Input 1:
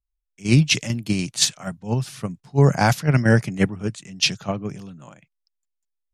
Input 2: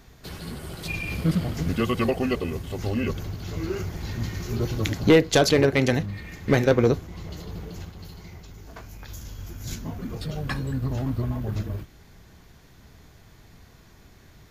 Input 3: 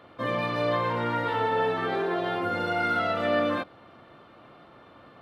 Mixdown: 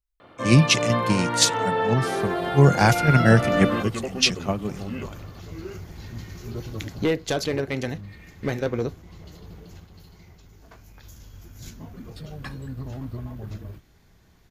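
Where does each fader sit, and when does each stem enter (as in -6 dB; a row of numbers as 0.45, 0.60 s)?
0.0, -7.0, +1.5 dB; 0.00, 1.95, 0.20 s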